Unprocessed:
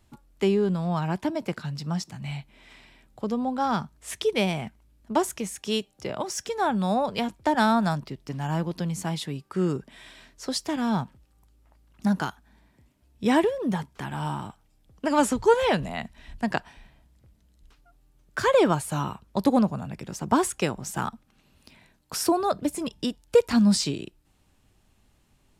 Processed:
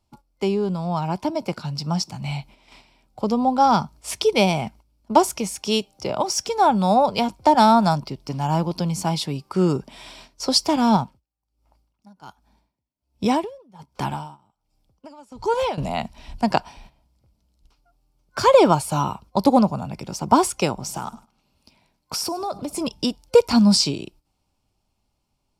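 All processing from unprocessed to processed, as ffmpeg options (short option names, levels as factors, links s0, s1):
-filter_complex "[0:a]asettb=1/sr,asplit=3[s0][s1][s2];[s0]atrim=end=10.964[s3];[s1]atrim=start=10.96:end=15.78,asetpts=PTS-STARTPTS,afade=t=in:d=0.004:c=qsin,afade=t=out:st=4.816:d=0.004:c=qsin,acompressor=threshold=0.0447:ratio=2:attack=3.2:release=140:knee=1:detection=peak,aeval=exprs='val(0)*pow(10,-25*(0.5-0.5*cos(2*PI*1.3*n/s))/20)':c=same[s4];[s2]atrim=start=15.776[s5];[s3][s4]acrossfade=d=0.004:c1=hsin:c2=qsin[s6];[s6][s5]acrossfade=d=0.004:c1=qsin:c2=hsin,asettb=1/sr,asplit=3[s7][s8][s9];[s7]atrim=end=20.744[s10];[s8]atrim=start=20.74:end=22.74,asetpts=PTS-STARTPTS,afade=t=in:d=0.004:c=qsin,afade=t=out:st=1.996:d=0.004:c=qsin,acompressor=threshold=0.0316:ratio=6:attack=3.2:release=140:knee=1:detection=peak,aecho=1:1:102|204|306:0.112|0.0415|0.0154,atrim=end_sample=88200[s11];[s9]atrim=start=22.736[s12];[s10][s11]acrossfade=d=0.004:c1=hsin:c2=qsin[s13];[s13][s12]acrossfade=d=0.004:c1=qsin:c2=hsin,agate=range=0.316:threshold=0.00316:ratio=16:detection=peak,superequalizer=8b=1.41:9b=1.78:11b=0.398:14b=2,dynaudnorm=f=300:g=13:m=2.51"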